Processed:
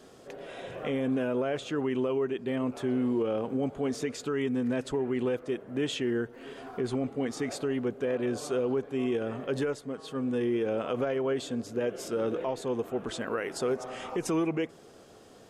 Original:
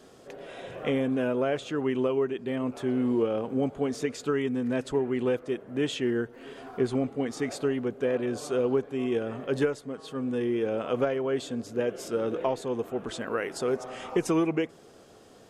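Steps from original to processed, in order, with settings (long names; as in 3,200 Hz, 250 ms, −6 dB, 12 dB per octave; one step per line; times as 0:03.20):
brickwall limiter −21 dBFS, peak gain reduction 7.5 dB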